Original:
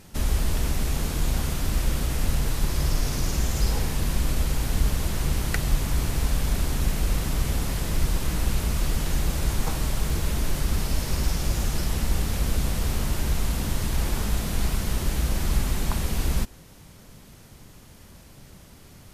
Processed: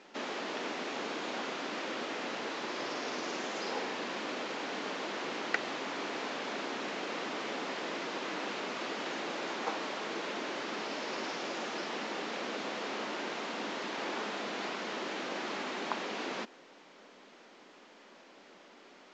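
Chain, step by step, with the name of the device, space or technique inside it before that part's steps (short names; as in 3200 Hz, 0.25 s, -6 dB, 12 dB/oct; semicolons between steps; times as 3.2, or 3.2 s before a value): HPF 230 Hz 24 dB/oct; telephone (BPF 320–3300 Hz; A-law 128 kbps 16000 Hz)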